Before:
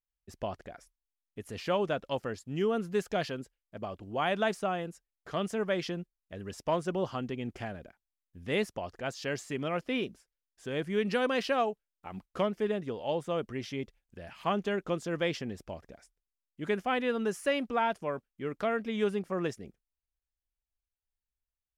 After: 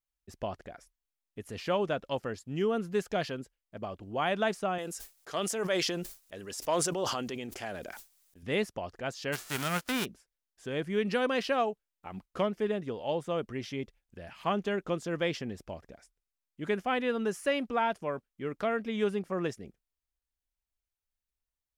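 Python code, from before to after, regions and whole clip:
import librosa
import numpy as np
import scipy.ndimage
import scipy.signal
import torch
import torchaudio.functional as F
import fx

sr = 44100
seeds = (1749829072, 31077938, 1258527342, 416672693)

y = fx.chain(x, sr, fx.gate_hold(open_db=-45.0, close_db=-48.0, hold_ms=71.0, range_db=-21, attack_ms=1.4, release_ms=100.0),
    fx.bass_treble(bass_db=-11, treble_db=10),
    fx.sustainer(db_per_s=30.0), at=(4.78, 8.43))
y = fx.envelope_flatten(y, sr, power=0.3, at=(9.32, 10.04), fade=0.02)
y = fx.peak_eq(y, sr, hz=1400.0, db=7.5, octaves=0.31, at=(9.32, 10.04), fade=0.02)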